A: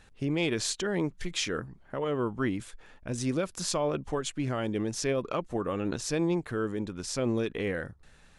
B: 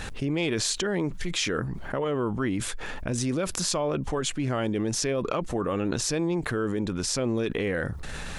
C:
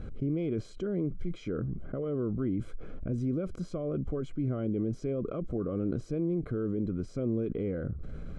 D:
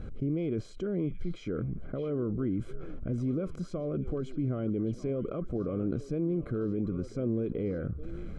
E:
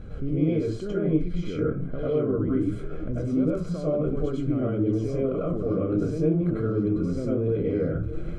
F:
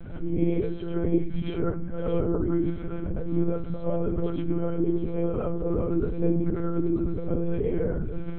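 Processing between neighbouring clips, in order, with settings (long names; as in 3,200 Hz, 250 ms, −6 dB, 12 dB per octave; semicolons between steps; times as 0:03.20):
envelope flattener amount 70%
moving average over 49 samples; level −1.5 dB
echo through a band-pass that steps 622 ms, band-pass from 2,800 Hz, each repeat −1.4 octaves, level −7.5 dB
convolution reverb RT60 0.35 s, pre-delay 87 ms, DRR −6.5 dB
one-pitch LPC vocoder at 8 kHz 170 Hz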